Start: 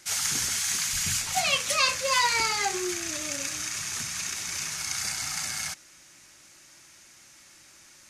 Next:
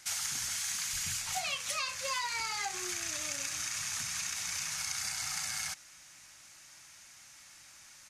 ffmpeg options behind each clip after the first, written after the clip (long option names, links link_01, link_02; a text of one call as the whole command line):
ffmpeg -i in.wav -af "firequalizer=gain_entry='entry(110,0);entry(370,-9);entry(730,2)':delay=0.05:min_phase=1,acompressor=threshold=-29dB:ratio=6,volume=-3.5dB" out.wav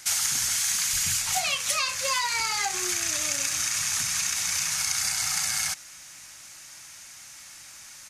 ffmpeg -i in.wav -af "highshelf=frequency=7500:gain=5.5,volume=7.5dB" out.wav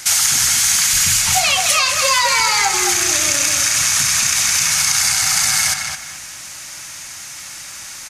ffmpeg -i in.wav -filter_complex "[0:a]asplit=2[link_01][link_02];[link_02]adelay=215,lowpass=frequency=3700:poles=1,volume=-5dB,asplit=2[link_03][link_04];[link_04]adelay=215,lowpass=frequency=3700:poles=1,volume=0.29,asplit=2[link_05][link_06];[link_06]adelay=215,lowpass=frequency=3700:poles=1,volume=0.29,asplit=2[link_07][link_08];[link_08]adelay=215,lowpass=frequency=3700:poles=1,volume=0.29[link_09];[link_01][link_03][link_05][link_07][link_09]amix=inputs=5:normalize=0,asplit=2[link_10][link_11];[link_11]alimiter=limit=-20.5dB:level=0:latency=1,volume=-1dB[link_12];[link_10][link_12]amix=inputs=2:normalize=0,volume=7dB" out.wav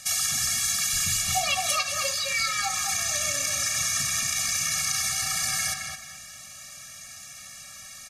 ffmpeg -i in.wav -af "afftfilt=real='re*eq(mod(floor(b*sr/1024/270),2),0)':imag='im*eq(mod(floor(b*sr/1024/270),2),0)':win_size=1024:overlap=0.75,volume=-7.5dB" out.wav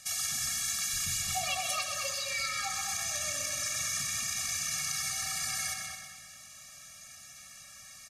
ffmpeg -i in.wav -af "aecho=1:1:127|254|381|508|635:0.447|0.205|0.0945|0.0435|0.02,volume=-8dB" out.wav